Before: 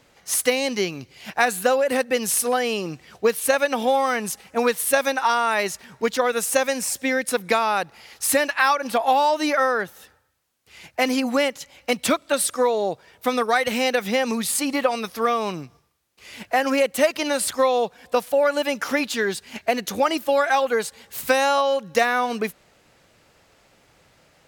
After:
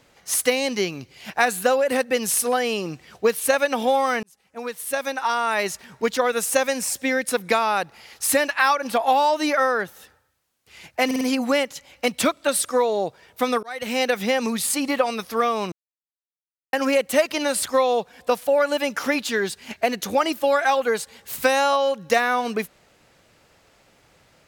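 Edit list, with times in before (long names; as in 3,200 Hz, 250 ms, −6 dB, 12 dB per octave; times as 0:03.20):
0:04.23–0:05.70: fade in
0:11.06: stutter 0.05 s, 4 plays
0:13.48–0:13.87: fade in
0:15.57–0:16.58: silence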